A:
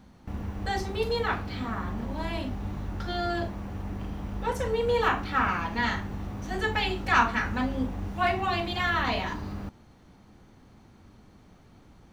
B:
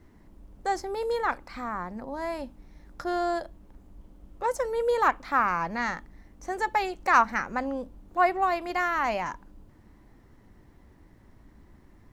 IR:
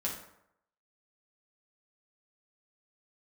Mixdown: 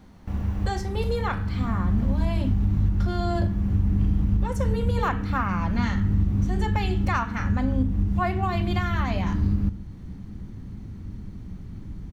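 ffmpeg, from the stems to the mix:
-filter_complex "[0:a]asubboost=boost=9:cutoff=220,volume=0dB,asplit=2[link_01][link_02];[link_02]volume=-13dB[link_03];[1:a]adelay=8.8,volume=-1.5dB,asplit=2[link_04][link_05];[link_05]apad=whole_len=534504[link_06];[link_01][link_06]sidechaincompress=threshold=-33dB:ratio=8:attack=29:release=785[link_07];[2:a]atrim=start_sample=2205[link_08];[link_03][link_08]afir=irnorm=-1:irlink=0[link_09];[link_07][link_04][link_09]amix=inputs=3:normalize=0,alimiter=limit=-13.5dB:level=0:latency=1:release=338"

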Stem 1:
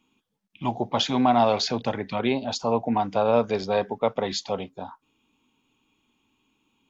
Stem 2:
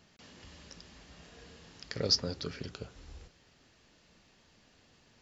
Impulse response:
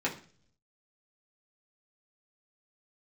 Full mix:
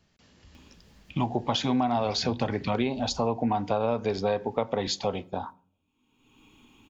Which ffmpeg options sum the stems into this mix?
-filter_complex "[0:a]agate=range=-33dB:threshold=-39dB:ratio=3:detection=peak,acompressor=mode=upward:threshold=-25dB:ratio=2.5,adelay=550,volume=-1dB,asplit=2[link_01][link_02];[link_02]volume=-18.5dB[link_03];[1:a]acrossover=split=390[link_04][link_05];[link_05]acompressor=threshold=-43dB:ratio=6[link_06];[link_04][link_06]amix=inputs=2:normalize=0,volume=-6dB[link_07];[2:a]atrim=start_sample=2205[link_08];[link_03][link_08]afir=irnorm=-1:irlink=0[link_09];[link_01][link_07][link_09]amix=inputs=3:normalize=0,lowshelf=frequency=130:gain=9,acompressor=threshold=-22dB:ratio=6"

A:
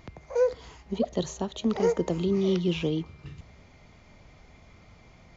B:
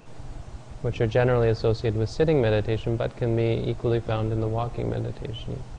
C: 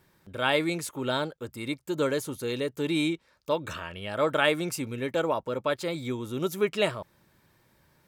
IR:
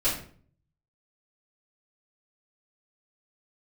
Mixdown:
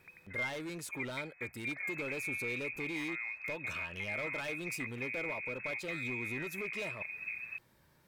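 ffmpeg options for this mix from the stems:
-filter_complex "[0:a]volume=-12.5dB[link_01];[1:a]acompressor=threshold=-31dB:ratio=2.5,adelay=1800,volume=-6dB[link_02];[2:a]acompressor=threshold=-38dB:ratio=2,volume=34.5dB,asoftclip=hard,volume=-34.5dB,volume=-3.5dB[link_03];[link_01][link_02]amix=inputs=2:normalize=0,lowpass=frequency=2200:width_type=q:width=0.5098,lowpass=frequency=2200:width_type=q:width=0.6013,lowpass=frequency=2200:width_type=q:width=0.9,lowpass=frequency=2200:width_type=q:width=2.563,afreqshift=-2600,alimiter=level_in=6.5dB:limit=-24dB:level=0:latency=1:release=250,volume=-6.5dB,volume=0dB[link_04];[link_03][link_04]amix=inputs=2:normalize=0"

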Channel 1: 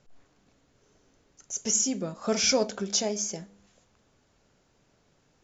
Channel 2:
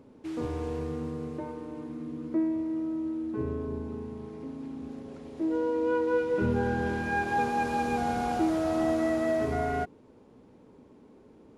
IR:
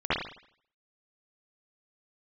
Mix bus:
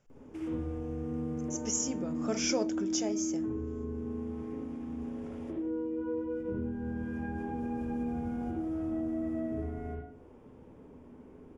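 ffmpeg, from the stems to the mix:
-filter_complex "[0:a]volume=-6.5dB,asplit=2[link_01][link_02];[1:a]acrossover=split=420[link_03][link_04];[link_04]acompressor=threshold=-42dB:ratio=10[link_05];[link_03][link_05]amix=inputs=2:normalize=0,lowshelf=frequency=66:gain=11.5,acompressor=threshold=-35dB:ratio=6,adelay=100,volume=-5dB,asplit=2[link_06][link_07];[link_07]volume=-9.5dB[link_08];[link_02]apad=whole_len=515056[link_09];[link_06][link_09]sidechaincompress=threshold=-41dB:ratio=8:attack=16:release=111[link_10];[2:a]atrim=start_sample=2205[link_11];[link_08][link_11]afir=irnorm=-1:irlink=0[link_12];[link_01][link_10][link_12]amix=inputs=3:normalize=0,equalizer=frequency=4100:width_type=o:width=0.3:gain=-13"

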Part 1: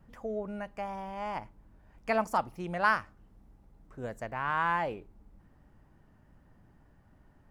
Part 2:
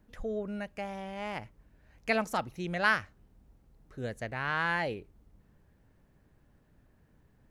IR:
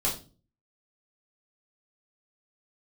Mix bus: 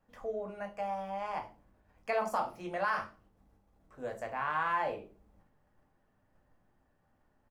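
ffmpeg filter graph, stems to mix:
-filter_complex "[0:a]agate=range=-6dB:threshold=-57dB:ratio=16:detection=peak,bass=frequency=250:gain=-12,treble=frequency=4000:gain=-1,volume=-5.5dB,asplit=2[link_01][link_02];[link_02]volume=-7dB[link_03];[1:a]adelay=20,volume=-16.5dB[link_04];[2:a]atrim=start_sample=2205[link_05];[link_03][link_05]afir=irnorm=-1:irlink=0[link_06];[link_01][link_04][link_06]amix=inputs=3:normalize=0,alimiter=limit=-21.5dB:level=0:latency=1:release=63"

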